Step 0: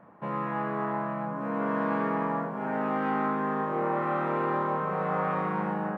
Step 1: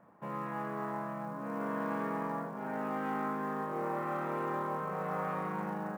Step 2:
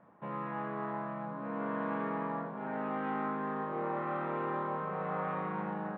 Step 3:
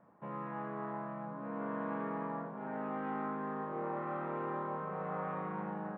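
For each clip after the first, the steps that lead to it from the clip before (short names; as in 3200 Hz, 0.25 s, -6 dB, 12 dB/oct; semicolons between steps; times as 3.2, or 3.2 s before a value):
short-mantissa float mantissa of 4-bit; gain -7 dB
steep low-pass 3900 Hz 48 dB/oct
high shelf 3200 Hz -11 dB; gain -2.5 dB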